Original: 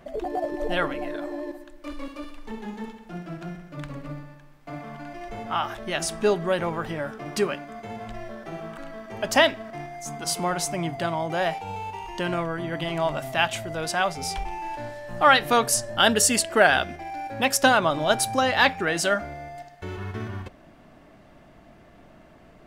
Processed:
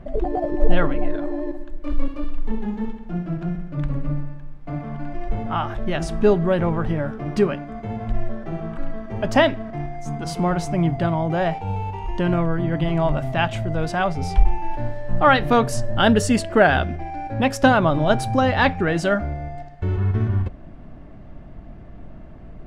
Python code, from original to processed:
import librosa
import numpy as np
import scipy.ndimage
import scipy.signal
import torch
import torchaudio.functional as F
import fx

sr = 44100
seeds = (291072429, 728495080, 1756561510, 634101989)

y = fx.riaa(x, sr, side='playback')
y = y * librosa.db_to_amplitude(1.5)